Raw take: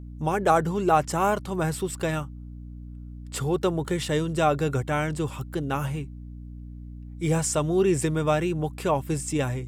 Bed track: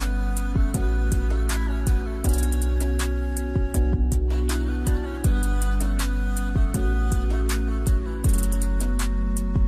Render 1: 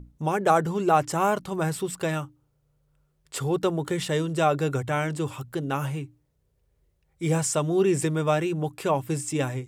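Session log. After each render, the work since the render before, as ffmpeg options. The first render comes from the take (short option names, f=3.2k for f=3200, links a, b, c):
-af "bandreject=f=60:t=h:w=6,bandreject=f=120:t=h:w=6,bandreject=f=180:t=h:w=6,bandreject=f=240:t=h:w=6,bandreject=f=300:t=h:w=6"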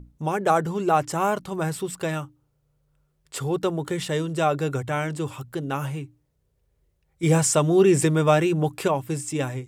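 -filter_complex "[0:a]asettb=1/sr,asplit=3[a][b][c];[a]atrim=end=7.234[d];[b]atrim=start=7.23:end=8.88,asetpts=PTS-STARTPTS,afade=t=in:d=0.004:c=qsin,afade=t=out:st=1.646:d=0.004:c=qsin,acontrast=28[e];[c]atrim=start=8.876[f];[d][e]acrossfade=d=0.004:c1=hsin:c2=qsin[g];[g][f]acrossfade=d=0.004:c1=qsin:c2=hsin"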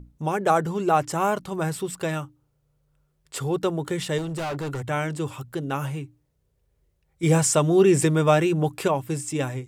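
-filter_complex "[0:a]asettb=1/sr,asplit=3[a][b][c];[a]atrim=end=4.184[d];[b]atrim=start=4.18:end=4.84,asetpts=PTS-STARTPTS,afade=t=in:d=0.004:c=qsin,afade=t=out:st=0.656:d=0.004:c=qsin,volume=27dB,asoftclip=hard,volume=-27dB[e];[c]atrim=start=4.836[f];[d][e]acrossfade=d=0.004:c1=hsin:c2=qsin[g];[g][f]acrossfade=d=0.004:c1=qsin:c2=hsin"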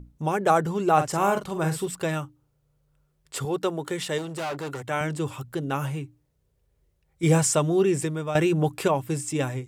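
-filter_complex "[0:a]asettb=1/sr,asplit=3[a][b][c];[a]atrim=end=0.934[d];[b]atrim=start=0.93:end=1.88,asetpts=PTS-STARTPTS,afade=t=in:d=0.004:c=qsin,afade=t=out:st=0.946:d=0.004:c=qsin,asplit=2[e][f];[f]adelay=45,volume=-8dB[g];[e][g]amix=inputs=2:normalize=0,atrim=end_sample=41895[h];[c]atrim=start=1.876[i];[d][h]acrossfade=d=0.004:c1=hsin:c2=qsin[j];[j][i]acrossfade=d=0.004:c1=qsin:c2=hsin,asettb=1/sr,asplit=3[k][l][m];[k]atrim=end=3.454[n];[l]atrim=start=3.45:end=5.01,asetpts=PTS-STARTPTS,afade=t=in:d=0.004:c=qsin,afade=t=out:st=1.556:d=0.004:c=qsin,highpass=f=290:p=1[o];[m]atrim=start=5.006[p];[n][o]acrossfade=d=0.004:c1=hsin:c2=qsin[q];[q][p]acrossfade=d=0.004:c1=qsin:c2=hsin,asplit=2[r][s];[r]atrim=end=8.35,asetpts=PTS-STARTPTS,afade=t=out:st=7.26:d=1.09:silence=0.223872[t];[s]atrim=start=8.35,asetpts=PTS-STARTPTS,afade=t=in:d=0.004:c=hsin:silence=0.223872[u];[t][u]concat=n=2:v=0:a=1"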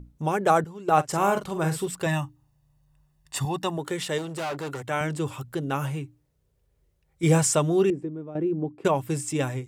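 -filter_complex "[0:a]asettb=1/sr,asplit=3[a][b][c];[a]atrim=end=0.644[d];[b]atrim=start=0.64:end=1.09,asetpts=PTS-STARTPTS,afade=t=in:d=0.004:c=qsin,afade=t=out:st=0.446:d=0.004:c=qsin,agate=range=-13dB:threshold=-21dB:ratio=16:release=100:detection=peak[e];[c]atrim=start=1.086[f];[d][e]acrossfade=d=0.004:c1=hsin:c2=qsin[g];[g][f]acrossfade=d=0.004:c1=qsin:c2=hsin,asettb=1/sr,asplit=3[h][i][j];[h]atrim=end=2.064[k];[i]atrim=start=2.06:end=3.78,asetpts=PTS-STARTPTS,afade=t=in:d=0.004:c=qsin,afade=t=out:st=1.716:d=0.004:c=qsin,aecho=1:1:1.1:0.79,atrim=end_sample=75852[l];[j]atrim=start=3.776[m];[k][l]acrossfade=d=0.004:c1=hsin:c2=qsin[n];[n][m]acrossfade=d=0.004:c1=qsin:c2=hsin,asettb=1/sr,asplit=3[o][p][q];[o]atrim=end=7.904[r];[p]atrim=start=7.9:end=8.85,asetpts=PTS-STARTPTS,afade=t=in:d=0.004:c=qsin,afade=t=out:st=0.946:d=0.004:c=qsin,bandpass=f=280:t=q:w=2[s];[q]atrim=start=8.846[t];[r][s]acrossfade=d=0.004:c1=hsin:c2=qsin[u];[u][t]acrossfade=d=0.004:c1=qsin:c2=hsin"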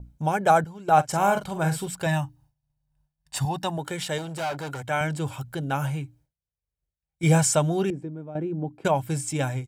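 -af "agate=range=-33dB:threshold=-53dB:ratio=3:detection=peak,aecho=1:1:1.3:0.48"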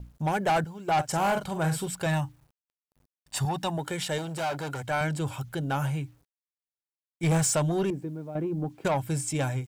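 -af "acrusher=bits=10:mix=0:aa=0.000001,asoftclip=type=tanh:threshold=-20dB"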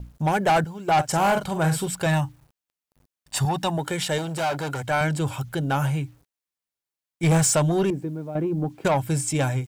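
-af "volume=5dB"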